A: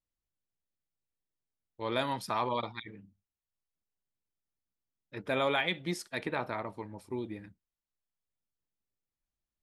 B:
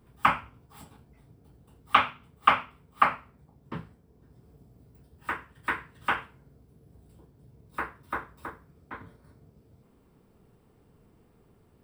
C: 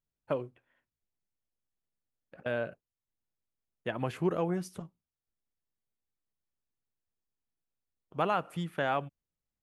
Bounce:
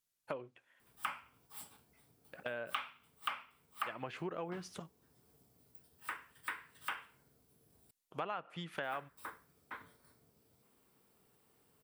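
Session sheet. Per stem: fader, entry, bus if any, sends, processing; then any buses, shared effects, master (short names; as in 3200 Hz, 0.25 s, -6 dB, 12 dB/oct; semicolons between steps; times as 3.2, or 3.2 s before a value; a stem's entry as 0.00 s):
off
-6.5 dB, 0.80 s, muted 7.91–8.74, no send, tilt +3.5 dB/oct
+1.5 dB, 0.00 s, no send, tilt +3 dB/oct; treble ducked by the level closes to 2600 Hz, closed at -32 dBFS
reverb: off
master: compressor 3:1, threshold -40 dBFS, peak gain reduction 15.5 dB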